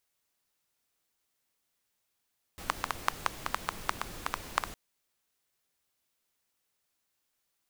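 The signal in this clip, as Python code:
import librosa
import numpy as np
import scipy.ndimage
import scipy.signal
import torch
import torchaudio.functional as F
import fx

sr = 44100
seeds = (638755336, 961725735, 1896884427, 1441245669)

y = fx.rain(sr, seeds[0], length_s=2.16, drops_per_s=6.6, hz=1100.0, bed_db=-6.5)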